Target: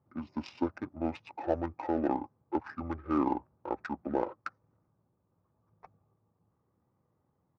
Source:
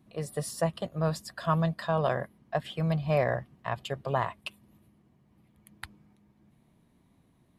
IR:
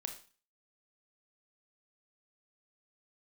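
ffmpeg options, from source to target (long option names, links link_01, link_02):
-af "asetrate=22696,aresample=44100,atempo=1.94306,adynamicsmooth=sensitivity=6.5:basefreq=1100,highpass=170,equalizer=frequency=250:width_type=q:width=4:gain=3,equalizer=frequency=800:width_type=q:width=4:gain=10,equalizer=frequency=1200:width_type=q:width=4:gain=9,equalizer=frequency=2500:width_type=q:width=4:gain=4,equalizer=frequency=5600:width_type=q:width=4:gain=4,lowpass=frequency=7600:width=0.5412,lowpass=frequency=7600:width=1.3066,volume=-3dB"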